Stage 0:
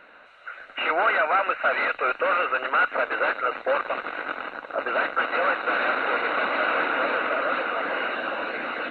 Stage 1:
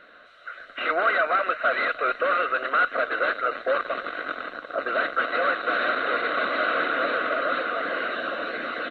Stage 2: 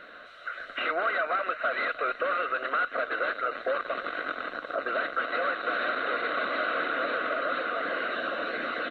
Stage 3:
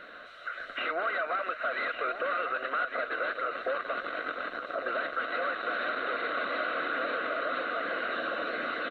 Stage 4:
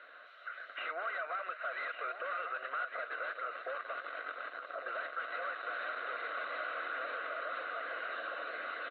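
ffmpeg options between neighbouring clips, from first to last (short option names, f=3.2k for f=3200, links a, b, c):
-af "superequalizer=9b=0.282:12b=0.562:13b=1.78:14b=1.58,aecho=1:1:312:0.0944"
-af "acompressor=threshold=-36dB:ratio=2,volume=3.5dB"
-filter_complex "[0:a]asplit=2[a][b];[b]alimiter=level_in=3dB:limit=-24dB:level=0:latency=1:release=186,volume=-3dB,volume=1dB[c];[a][c]amix=inputs=2:normalize=0,aecho=1:1:1157:0.335,volume=-6.5dB"
-af "highpass=580,lowpass=3.5k,volume=-6.5dB"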